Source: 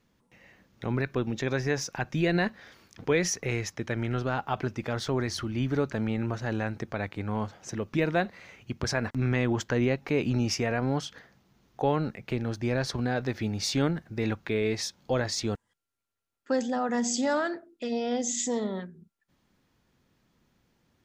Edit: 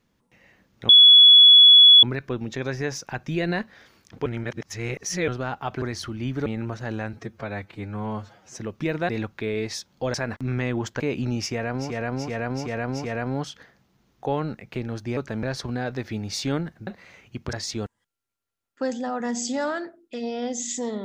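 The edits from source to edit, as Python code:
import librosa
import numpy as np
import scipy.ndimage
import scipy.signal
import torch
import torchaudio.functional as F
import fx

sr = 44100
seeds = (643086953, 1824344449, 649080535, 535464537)

y = fx.edit(x, sr, fx.insert_tone(at_s=0.89, length_s=1.14, hz=3390.0, db=-7.5),
    fx.reverse_span(start_s=3.12, length_s=1.02),
    fx.cut(start_s=4.68, length_s=0.49),
    fx.move(start_s=5.81, length_s=0.26, to_s=12.73),
    fx.stretch_span(start_s=6.74, length_s=0.96, factor=1.5),
    fx.swap(start_s=8.22, length_s=0.66, other_s=14.17, other_length_s=1.05),
    fx.cut(start_s=9.74, length_s=0.34),
    fx.repeat(start_s=10.58, length_s=0.38, count=5, crossfade_s=0.24), tone=tone)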